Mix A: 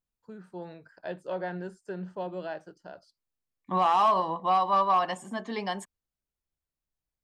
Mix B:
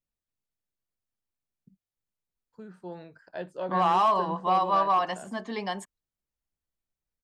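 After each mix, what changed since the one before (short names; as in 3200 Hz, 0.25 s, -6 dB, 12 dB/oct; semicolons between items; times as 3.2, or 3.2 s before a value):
first voice: entry +2.30 s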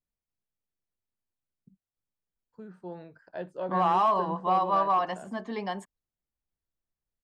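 master: add high shelf 2400 Hz -8 dB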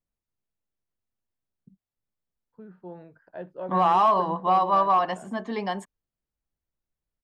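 first voice: add air absorption 330 m; second voice +4.0 dB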